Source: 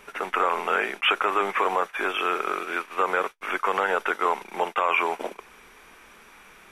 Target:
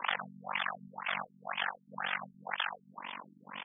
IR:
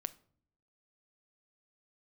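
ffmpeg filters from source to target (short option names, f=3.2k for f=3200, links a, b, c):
-filter_complex "[0:a]aecho=1:1:215:0.106,asplit=2[a][b];[b]asetrate=37084,aresample=44100,atempo=1.18921,volume=-6dB[c];[a][c]amix=inputs=2:normalize=0,crystalizer=i=8:c=0,asetrate=81144,aresample=44100,equalizer=f=870:w=2.1:g=10.5,afreqshift=190,acrossover=split=190|3000[d][e][f];[e]acompressor=threshold=-26dB:ratio=10[g];[d][g][f]amix=inputs=3:normalize=0,afftfilt=real='re*lt(hypot(re,im),0.0891)':imag='im*lt(hypot(re,im),0.0891)':win_size=1024:overlap=0.75,tremolo=f=47:d=1,acontrast=67,afftfilt=real='re*lt(b*sr/1024,320*pow(3600/320,0.5+0.5*sin(2*PI*2*pts/sr)))':imag='im*lt(b*sr/1024,320*pow(3600/320,0.5+0.5*sin(2*PI*2*pts/sr)))':win_size=1024:overlap=0.75,volume=1dB"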